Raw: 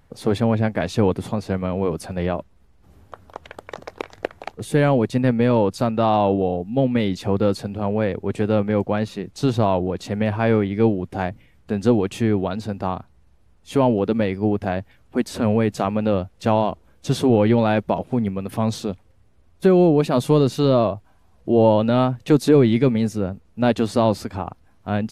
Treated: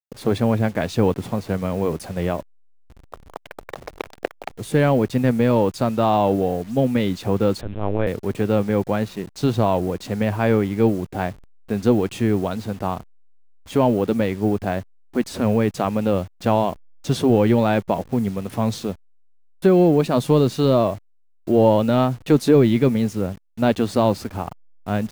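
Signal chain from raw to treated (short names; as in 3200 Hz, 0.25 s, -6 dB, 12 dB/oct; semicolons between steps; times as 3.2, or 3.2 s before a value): level-crossing sampler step -39 dBFS; 7.61–8.07 LPC vocoder at 8 kHz pitch kept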